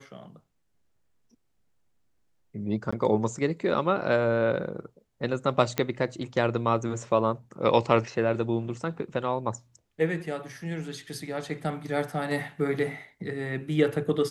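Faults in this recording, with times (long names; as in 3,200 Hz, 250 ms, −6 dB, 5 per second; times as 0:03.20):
0:02.91–0:02.92: drop-out 15 ms
0:05.78: click −10 dBFS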